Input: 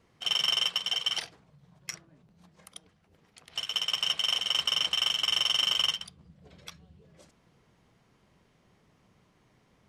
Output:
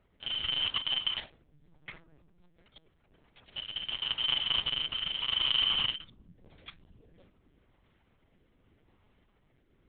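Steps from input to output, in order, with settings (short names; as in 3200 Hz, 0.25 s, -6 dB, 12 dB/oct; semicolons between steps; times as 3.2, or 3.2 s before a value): rotary speaker horn 0.85 Hz; LPC vocoder at 8 kHz pitch kept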